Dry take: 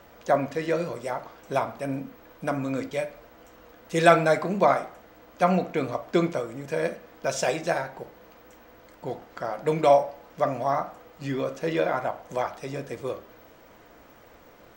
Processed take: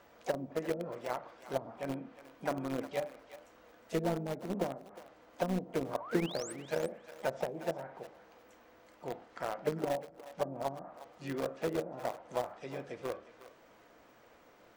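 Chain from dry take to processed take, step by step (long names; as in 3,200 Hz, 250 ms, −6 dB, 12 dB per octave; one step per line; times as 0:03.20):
treble cut that deepens with the level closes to 320 Hz, closed at −20.5 dBFS
low-shelf EQ 110 Hz −9.5 dB
in parallel at −8.5 dB: bit reduction 4 bits
on the sum: pitch-shifted copies added +5 semitones −12 dB
sound drawn into the spectrogram rise, 0:06.00–0:06.53, 860–9,300 Hz −38 dBFS
on a send: feedback echo with a high-pass in the loop 359 ms, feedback 16%, high-pass 860 Hz, level −12 dB
on the sum: level −8 dB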